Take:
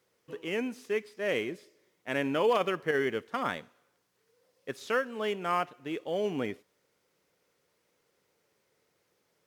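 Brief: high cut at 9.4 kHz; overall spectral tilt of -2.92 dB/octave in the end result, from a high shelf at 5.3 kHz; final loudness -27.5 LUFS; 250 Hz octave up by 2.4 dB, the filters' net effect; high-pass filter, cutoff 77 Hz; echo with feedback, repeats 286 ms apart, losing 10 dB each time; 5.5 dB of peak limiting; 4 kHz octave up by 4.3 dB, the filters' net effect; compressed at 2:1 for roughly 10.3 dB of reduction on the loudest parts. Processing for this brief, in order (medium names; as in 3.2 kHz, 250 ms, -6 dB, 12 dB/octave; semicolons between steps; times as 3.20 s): high-pass 77 Hz; low-pass 9.4 kHz; peaking EQ 250 Hz +3 dB; peaking EQ 4 kHz +4.5 dB; treble shelf 5.3 kHz +5.5 dB; compression 2:1, threshold -40 dBFS; peak limiter -28 dBFS; feedback delay 286 ms, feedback 32%, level -10 dB; trim +13 dB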